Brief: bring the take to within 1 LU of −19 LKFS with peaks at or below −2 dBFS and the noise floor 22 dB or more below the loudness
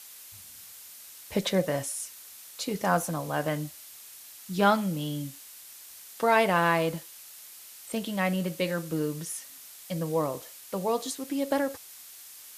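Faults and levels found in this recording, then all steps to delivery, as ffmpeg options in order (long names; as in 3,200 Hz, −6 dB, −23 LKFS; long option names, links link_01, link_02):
background noise floor −48 dBFS; target noise floor −51 dBFS; integrated loudness −29.0 LKFS; sample peak −9.5 dBFS; target loudness −19.0 LKFS
→ -af "afftdn=noise_reduction=6:noise_floor=-48"
-af "volume=10dB,alimiter=limit=-2dB:level=0:latency=1"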